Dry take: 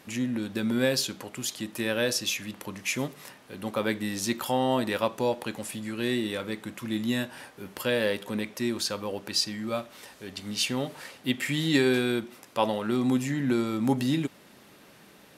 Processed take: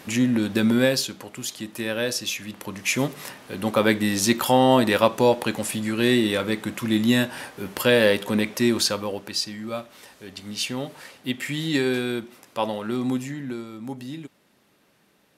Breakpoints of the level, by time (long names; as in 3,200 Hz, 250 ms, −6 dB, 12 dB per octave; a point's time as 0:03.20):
0:00.65 +8.5 dB
0:01.10 +1 dB
0:02.39 +1 dB
0:03.18 +8.5 dB
0:08.80 +8.5 dB
0:09.36 0 dB
0:13.11 0 dB
0:13.68 −9 dB